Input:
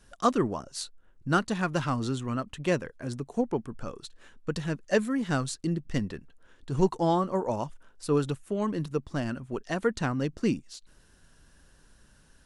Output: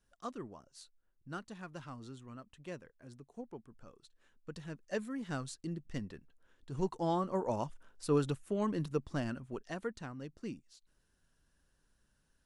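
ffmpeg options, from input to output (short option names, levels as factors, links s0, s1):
-af "volume=0.596,afade=t=in:st=3.99:d=1.33:silence=0.421697,afade=t=in:st=6.81:d=0.79:silence=0.473151,afade=t=out:st=9.08:d=0.95:silence=0.266073"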